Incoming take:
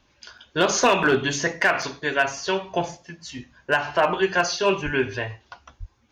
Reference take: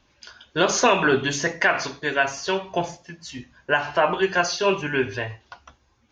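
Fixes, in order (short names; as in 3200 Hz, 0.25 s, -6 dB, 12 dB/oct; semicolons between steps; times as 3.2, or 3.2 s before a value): clip repair -10.5 dBFS; 4.84–4.96 HPF 140 Hz 24 dB/oct; 5.79–5.91 HPF 140 Hz 24 dB/oct; interpolate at 0.38/1.03/1.82, 4.1 ms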